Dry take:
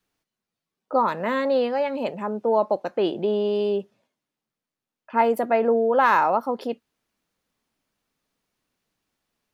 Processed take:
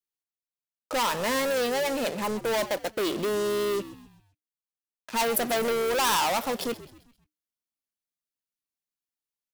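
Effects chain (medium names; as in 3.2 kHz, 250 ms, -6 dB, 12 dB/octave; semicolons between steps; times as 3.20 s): waveshaping leveller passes 5; pre-emphasis filter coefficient 0.8; frequency-shifting echo 131 ms, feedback 43%, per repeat -76 Hz, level -16 dB; trim -3 dB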